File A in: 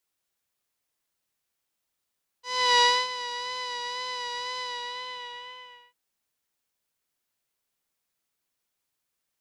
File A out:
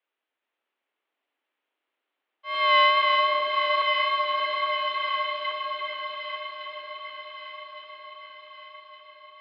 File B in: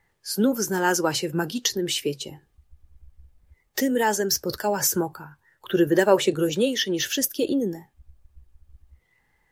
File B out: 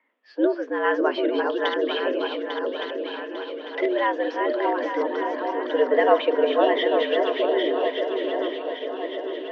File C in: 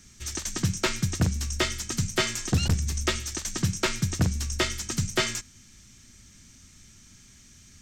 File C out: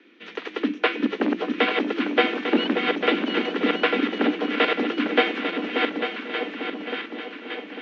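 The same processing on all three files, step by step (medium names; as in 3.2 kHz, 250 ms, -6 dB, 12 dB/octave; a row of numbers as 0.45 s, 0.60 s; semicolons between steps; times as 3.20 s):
backward echo that repeats 424 ms, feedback 62%, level -4 dB; mistuned SSB +110 Hz 150–3100 Hz; echo whose repeats swap between lows and highs 582 ms, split 970 Hz, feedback 72%, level -5 dB; normalise loudness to -24 LUFS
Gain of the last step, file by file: +3.5 dB, -1.0 dB, +5.5 dB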